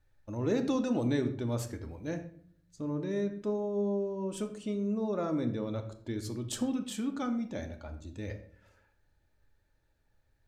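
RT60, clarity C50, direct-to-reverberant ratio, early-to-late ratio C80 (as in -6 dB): 0.55 s, 11.0 dB, 5.5 dB, 13.5 dB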